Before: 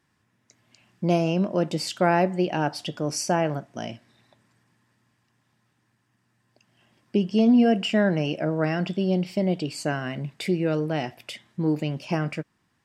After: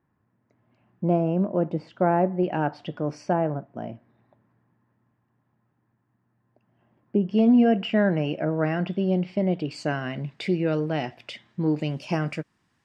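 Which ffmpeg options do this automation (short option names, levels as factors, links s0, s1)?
-af "asetnsamples=n=441:p=0,asendcmd='2.43 lowpass f 1900;3.33 lowpass f 1100;7.29 lowpass f 2500;9.71 lowpass f 4700;11.81 lowpass f 9900',lowpass=1100"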